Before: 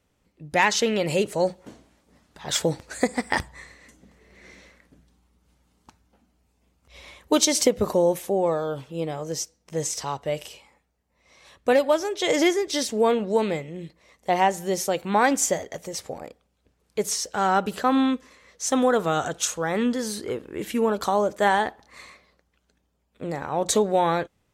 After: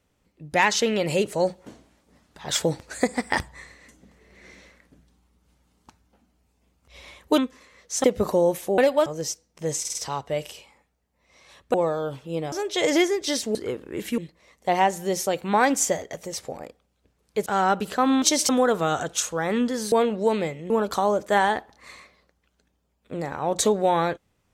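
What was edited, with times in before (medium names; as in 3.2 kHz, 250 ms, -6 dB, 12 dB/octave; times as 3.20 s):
7.38–7.65 s: swap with 18.08–18.74 s
8.39–9.17 s: swap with 11.70–11.98 s
9.91 s: stutter 0.05 s, 4 plays
13.01–13.79 s: swap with 20.17–20.80 s
17.07–17.32 s: delete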